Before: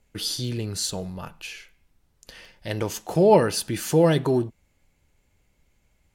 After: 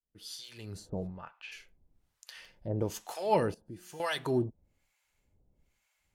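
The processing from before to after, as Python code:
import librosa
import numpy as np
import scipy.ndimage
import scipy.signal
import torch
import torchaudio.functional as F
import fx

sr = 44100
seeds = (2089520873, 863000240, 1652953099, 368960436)

y = fx.fade_in_head(x, sr, length_s=1.0)
y = fx.lowpass(y, sr, hz=fx.line((1.06, 1300.0), (1.51, 2400.0)), slope=12, at=(1.06, 1.51), fade=0.02)
y = fx.comb_fb(y, sr, f0_hz=180.0, decay_s=1.7, harmonics='all', damping=0.0, mix_pct=80, at=(3.54, 4.0))
y = fx.harmonic_tremolo(y, sr, hz=1.1, depth_pct=100, crossover_hz=780.0)
y = y * 10.0 ** (-2.5 / 20.0)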